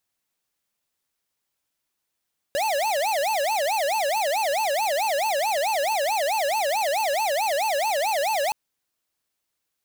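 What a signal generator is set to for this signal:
siren wail 551–892 Hz 4.6 per second square −23.5 dBFS 5.97 s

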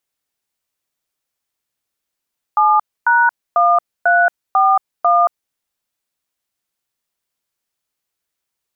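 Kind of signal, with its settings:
touch tones "7#1341", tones 227 ms, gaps 268 ms, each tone −12 dBFS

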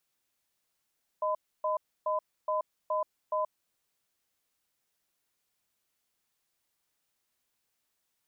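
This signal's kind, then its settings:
tone pair in a cadence 620 Hz, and 1,010 Hz, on 0.13 s, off 0.29 s, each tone −29.5 dBFS 2.36 s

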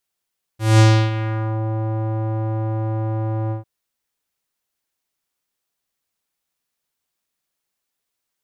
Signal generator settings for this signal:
subtractive voice square A2 12 dB per octave, low-pass 810 Hz, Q 1.3, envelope 4 octaves, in 1.01 s, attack 203 ms, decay 0.31 s, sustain −13 dB, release 0.13 s, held 2.92 s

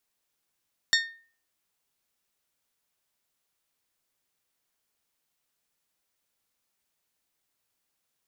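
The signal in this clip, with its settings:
struck glass bell, lowest mode 1,830 Hz, decay 0.43 s, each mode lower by 1.5 dB, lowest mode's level −19 dB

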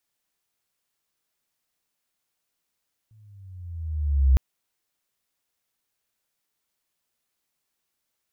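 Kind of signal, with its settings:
pitch glide with a swell sine, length 1.26 s, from 111 Hz, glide −9.5 semitones, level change +39.5 dB, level −12 dB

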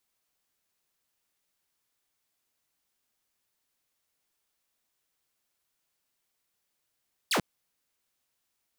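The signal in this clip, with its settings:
single falling chirp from 5,300 Hz, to 130 Hz, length 0.09 s saw, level −21 dB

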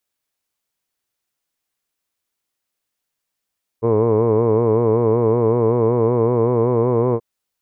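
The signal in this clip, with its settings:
vowel by formant synthesis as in hood, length 3.38 s, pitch 111 Hz, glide +1.5 semitones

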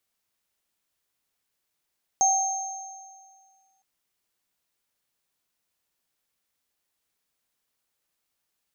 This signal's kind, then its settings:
inharmonic partials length 1.61 s, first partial 770 Hz, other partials 6,390 Hz, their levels 1 dB, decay 1.91 s, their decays 1.77 s, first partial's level −19.5 dB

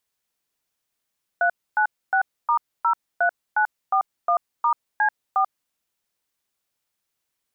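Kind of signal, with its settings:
touch tones "396*03941*C4", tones 88 ms, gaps 271 ms, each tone −19 dBFS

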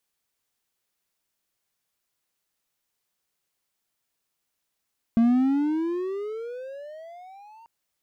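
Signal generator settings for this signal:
pitch glide with a swell triangle, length 2.49 s, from 226 Hz, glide +24.5 semitones, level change −32 dB, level −13 dB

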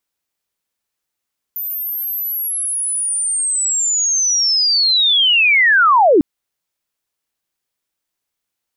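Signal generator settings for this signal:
glide linear 14,000 Hz → 260 Hz −21 dBFS → −7 dBFS 4.65 s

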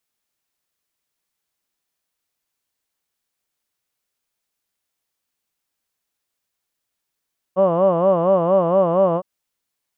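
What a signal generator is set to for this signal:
vowel from formants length 1.66 s, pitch 180 Hz, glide 0 semitones, vibrato 4.3 Hz, vibrato depth 1.45 semitones, F1 590 Hz, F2 1,100 Hz, F3 2,900 Hz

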